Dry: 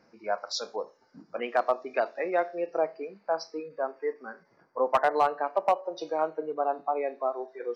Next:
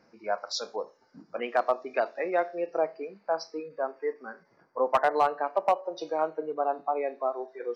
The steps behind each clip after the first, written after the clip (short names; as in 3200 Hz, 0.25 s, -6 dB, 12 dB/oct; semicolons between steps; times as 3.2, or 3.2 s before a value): nothing audible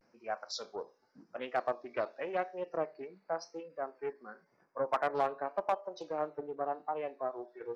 vibrato 0.9 Hz 99 cents; Doppler distortion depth 0.22 ms; gain -7.5 dB